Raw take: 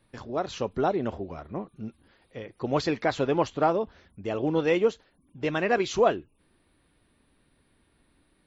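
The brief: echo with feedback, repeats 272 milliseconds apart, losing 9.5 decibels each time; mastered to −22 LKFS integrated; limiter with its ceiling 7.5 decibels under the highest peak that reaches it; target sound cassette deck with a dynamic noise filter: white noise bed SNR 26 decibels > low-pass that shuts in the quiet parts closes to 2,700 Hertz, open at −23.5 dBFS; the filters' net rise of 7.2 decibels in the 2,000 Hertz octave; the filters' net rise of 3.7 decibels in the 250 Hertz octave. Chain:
parametric band 250 Hz +5 dB
parametric band 2,000 Hz +9 dB
brickwall limiter −14.5 dBFS
repeating echo 272 ms, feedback 33%, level −9.5 dB
white noise bed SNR 26 dB
low-pass that shuts in the quiet parts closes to 2,700 Hz, open at −23.5 dBFS
level +5.5 dB

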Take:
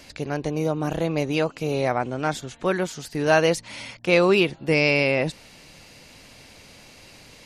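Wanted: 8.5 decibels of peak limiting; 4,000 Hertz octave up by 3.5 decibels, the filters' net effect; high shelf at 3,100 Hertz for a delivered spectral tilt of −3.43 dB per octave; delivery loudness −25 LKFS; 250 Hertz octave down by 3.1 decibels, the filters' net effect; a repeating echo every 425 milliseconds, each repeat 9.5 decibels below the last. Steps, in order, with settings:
parametric band 250 Hz −5 dB
high-shelf EQ 3,100 Hz −4.5 dB
parametric band 4,000 Hz +8.5 dB
brickwall limiter −13.5 dBFS
repeating echo 425 ms, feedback 33%, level −9.5 dB
level +1 dB

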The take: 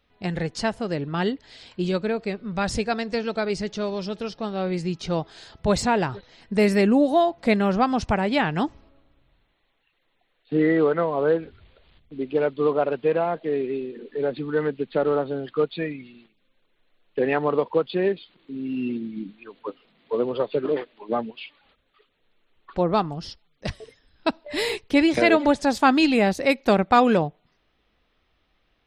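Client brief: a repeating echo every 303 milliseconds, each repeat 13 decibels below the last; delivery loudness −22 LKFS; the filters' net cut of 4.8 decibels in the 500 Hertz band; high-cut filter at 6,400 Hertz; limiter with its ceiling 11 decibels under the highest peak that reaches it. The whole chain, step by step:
low-pass filter 6,400 Hz
parametric band 500 Hz −6 dB
brickwall limiter −17.5 dBFS
repeating echo 303 ms, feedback 22%, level −13 dB
level +7 dB

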